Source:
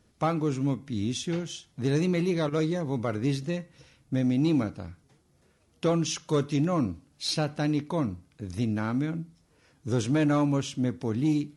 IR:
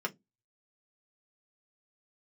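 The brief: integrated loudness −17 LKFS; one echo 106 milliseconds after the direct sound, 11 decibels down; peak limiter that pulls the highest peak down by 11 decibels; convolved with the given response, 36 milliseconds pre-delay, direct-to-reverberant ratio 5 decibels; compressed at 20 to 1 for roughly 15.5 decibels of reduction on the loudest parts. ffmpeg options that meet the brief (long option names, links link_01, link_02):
-filter_complex "[0:a]acompressor=threshold=-36dB:ratio=20,alimiter=level_in=10.5dB:limit=-24dB:level=0:latency=1,volume=-10.5dB,aecho=1:1:106:0.282,asplit=2[link_01][link_02];[1:a]atrim=start_sample=2205,adelay=36[link_03];[link_02][link_03]afir=irnorm=-1:irlink=0,volume=-9.5dB[link_04];[link_01][link_04]amix=inputs=2:normalize=0,volume=25dB"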